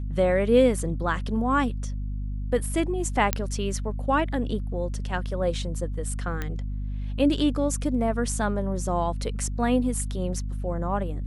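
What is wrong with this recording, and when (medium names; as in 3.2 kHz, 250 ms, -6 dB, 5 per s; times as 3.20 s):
hum 50 Hz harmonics 5 -30 dBFS
3.33 s: pop -5 dBFS
6.42 s: pop -16 dBFS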